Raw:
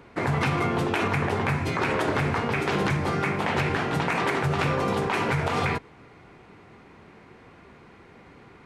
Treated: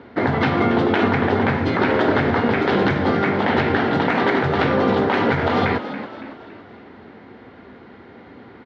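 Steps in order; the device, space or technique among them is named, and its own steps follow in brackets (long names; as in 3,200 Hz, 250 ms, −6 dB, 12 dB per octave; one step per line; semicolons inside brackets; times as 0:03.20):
frequency-shifting delay pedal into a guitar cabinet (echo with shifted repeats 280 ms, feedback 46%, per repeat +64 Hz, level −12 dB; loudspeaker in its box 86–4,000 Hz, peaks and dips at 150 Hz −9 dB, 250 Hz +5 dB, 1,100 Hz −6 dB, 2,500 Hz −10 dB)
level +8 dB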